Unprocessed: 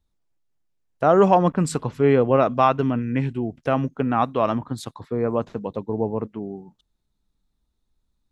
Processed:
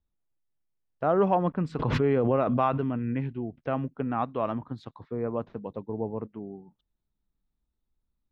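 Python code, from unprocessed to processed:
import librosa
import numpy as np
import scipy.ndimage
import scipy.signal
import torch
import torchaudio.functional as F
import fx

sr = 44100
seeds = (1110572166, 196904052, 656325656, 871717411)

y = fx.air_absorb(x, sr, metres=260.0)
y = fx.pre_swell(y, sr, db_per_s=21.0, at=(1.78, 3.13), fade=0.02)
y = F.gain(torch.from_numpy(y), -7.0).numpy()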